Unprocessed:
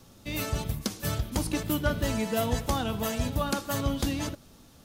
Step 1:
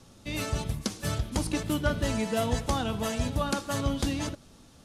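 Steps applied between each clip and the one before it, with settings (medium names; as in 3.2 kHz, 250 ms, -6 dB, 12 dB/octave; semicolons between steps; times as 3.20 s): low-pass 11 kHz 24 dB/octave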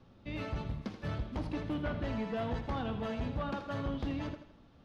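hard clipper -25.5 dBFS, distortion -11 dB; distance through air 320 m; thinning echo 81 ms, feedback 45%, high-pass 210 Hz, level -10 dB; trim -4.5 dB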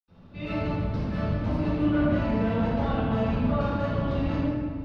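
reverberation RT60 1.9 s, pre-delay 76 ms; trim -5.5 dB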